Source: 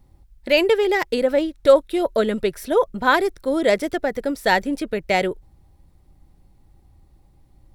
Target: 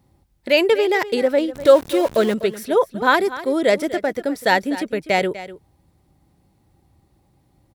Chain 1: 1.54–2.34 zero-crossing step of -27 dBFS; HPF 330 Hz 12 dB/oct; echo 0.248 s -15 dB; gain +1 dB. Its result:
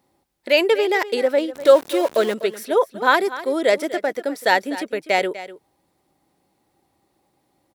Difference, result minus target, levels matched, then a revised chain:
125 Hz band -9.0 dB
1.54–2.34 zero-crossing step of -27 dBFS; HPF 100 Hz 12 dB/oct; echo 0.248 s -15 dB; gain +1 dB

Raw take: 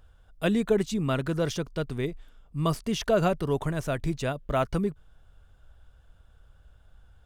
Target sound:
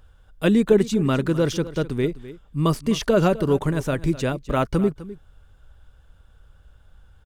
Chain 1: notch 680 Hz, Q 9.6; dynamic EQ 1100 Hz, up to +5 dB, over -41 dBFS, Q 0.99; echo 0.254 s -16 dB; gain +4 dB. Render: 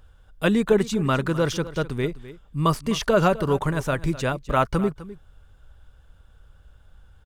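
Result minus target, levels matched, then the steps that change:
1000 Hz band +5.0 dB
change: dynamic EQ 300 Hz, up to +5 dB, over -41 dBFS, Q 0.99

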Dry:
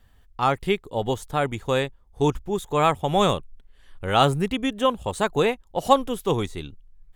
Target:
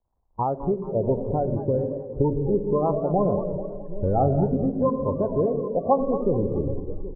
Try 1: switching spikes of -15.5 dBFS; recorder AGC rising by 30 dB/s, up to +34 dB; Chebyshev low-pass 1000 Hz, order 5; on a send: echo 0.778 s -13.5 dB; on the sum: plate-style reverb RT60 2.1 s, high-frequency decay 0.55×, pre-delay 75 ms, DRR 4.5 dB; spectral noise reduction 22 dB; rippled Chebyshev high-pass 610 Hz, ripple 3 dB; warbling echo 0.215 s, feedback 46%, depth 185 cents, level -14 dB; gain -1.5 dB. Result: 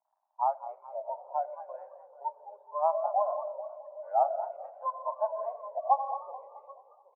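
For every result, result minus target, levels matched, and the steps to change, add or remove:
switching spikes: distortion +7 dB; 500 Hz band -2.5 dB
change: switching spikes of -23 dBFS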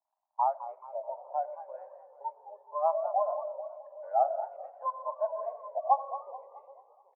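500 Hz band -2.0 dB
remove: rippled Chebyshev high-pass 610 Hz, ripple 3 dB

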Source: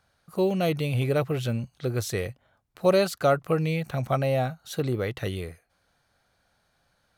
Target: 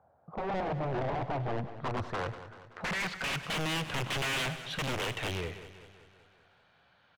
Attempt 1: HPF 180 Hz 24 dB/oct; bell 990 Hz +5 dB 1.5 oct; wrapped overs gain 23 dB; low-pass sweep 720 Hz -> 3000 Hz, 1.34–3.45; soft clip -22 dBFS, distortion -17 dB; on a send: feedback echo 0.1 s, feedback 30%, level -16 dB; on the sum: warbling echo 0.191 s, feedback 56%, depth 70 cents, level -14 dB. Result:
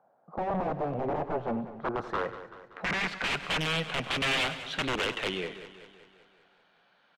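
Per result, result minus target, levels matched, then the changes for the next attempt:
125 Hz band -6.0 dB; soft clip: distortion -8 dB
change: HPF 69 Hz 24 dB/oct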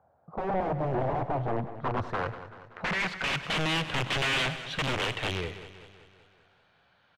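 soft clip: distortion -8 dB
change: soft clip -30 dBFS, distortion -9 dB

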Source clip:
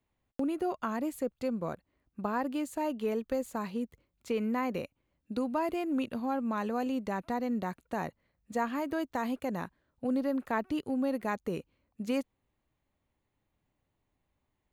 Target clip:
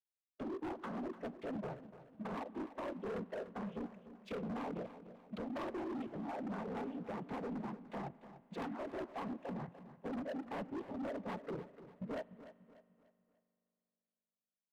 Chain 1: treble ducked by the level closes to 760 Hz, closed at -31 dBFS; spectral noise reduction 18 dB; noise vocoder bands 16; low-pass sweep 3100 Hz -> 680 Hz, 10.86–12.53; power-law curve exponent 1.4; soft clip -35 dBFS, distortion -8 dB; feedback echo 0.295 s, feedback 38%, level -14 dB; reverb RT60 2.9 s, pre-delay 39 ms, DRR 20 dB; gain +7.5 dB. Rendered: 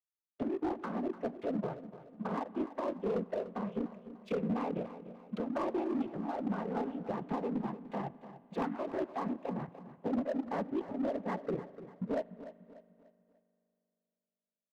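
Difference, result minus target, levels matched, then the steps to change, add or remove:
soft clip: distortion -5 dB
change: soft clip -46 dBFS, distortion -2 dB

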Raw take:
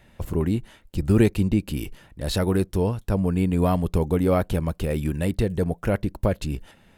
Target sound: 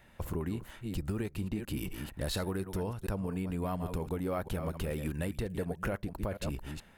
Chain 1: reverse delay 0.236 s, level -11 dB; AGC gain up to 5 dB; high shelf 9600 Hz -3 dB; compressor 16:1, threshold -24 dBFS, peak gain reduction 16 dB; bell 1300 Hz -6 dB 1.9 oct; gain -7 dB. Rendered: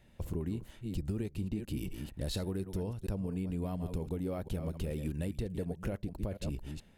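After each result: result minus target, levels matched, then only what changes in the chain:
1000 Hz band -7.5 dB; 8000 Hz band -3.0 dB
change: bell 1300 Hz +5.5 dB 1.9 oct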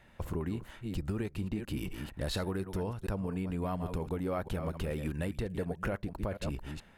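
8000 Hz band -4.0 dB
change: high shelf 9600 Hz +7 dB

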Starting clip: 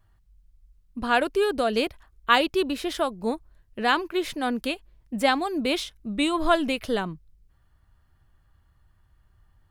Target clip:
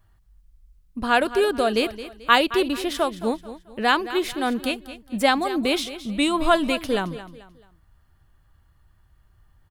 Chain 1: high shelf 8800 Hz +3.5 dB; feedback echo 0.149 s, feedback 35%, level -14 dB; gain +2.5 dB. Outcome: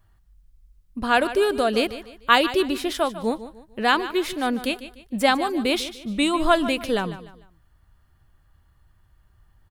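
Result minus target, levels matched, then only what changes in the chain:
echo 70 ms early
change: feedback echo 0.219 s, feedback 35%, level -14 dB

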